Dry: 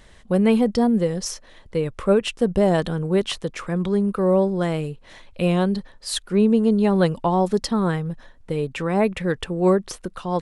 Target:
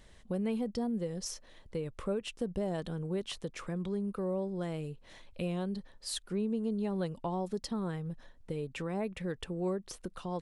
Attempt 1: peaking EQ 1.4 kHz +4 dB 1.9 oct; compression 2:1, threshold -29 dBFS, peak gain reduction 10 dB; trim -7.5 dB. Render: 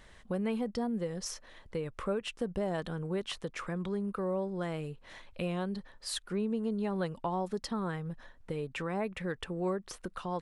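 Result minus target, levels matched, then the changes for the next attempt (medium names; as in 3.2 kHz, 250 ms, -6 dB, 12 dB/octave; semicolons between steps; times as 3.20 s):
1 kHz band +3.5 dB
change: peaking EQ 1.4 kHz -3.5 dB 1.9 oct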